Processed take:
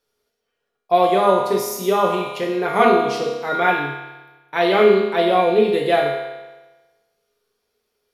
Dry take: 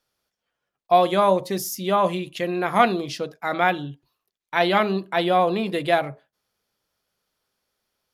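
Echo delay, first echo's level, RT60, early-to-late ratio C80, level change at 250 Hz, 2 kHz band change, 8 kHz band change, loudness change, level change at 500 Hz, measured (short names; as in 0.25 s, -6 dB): none, none, 1.2 s, 4.5 dB, +2.5 dB, +3.0 dB, n/a, +4.0 dB, +6.0 dB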